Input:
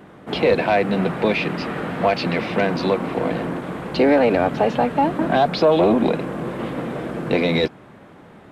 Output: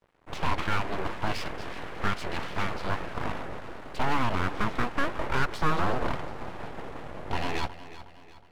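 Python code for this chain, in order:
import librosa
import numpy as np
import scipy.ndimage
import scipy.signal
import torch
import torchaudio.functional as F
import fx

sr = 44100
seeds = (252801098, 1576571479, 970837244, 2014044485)

p1 = fx.cvsd(x, sr, bps=64000)
p2 = fx.dynamic_eq(p1, sr, hz=1300.0, q=0.71, threshold_db=-30.0, ratio=4.0, max_db=5)
p3 = np.sign(p2) * np.maximum(np.abs(p2) - 10.0 ** (-40.5 / 20.0), 0.0)
p4 = fx.high_shelf(p3, sr, hz=4600.0, db=-10.0)
p5 = p4 + fx.echo_feedback(p4, sr, ms=365, feedback_pct=44, wet_db=-14.5, dry=0)
p6 = np.abs(p5)
p7 = fx.doppler_dist(p6, sr, depth_ms=0.19)
y = p7 * librosa.db_to_amplitude(-8.5)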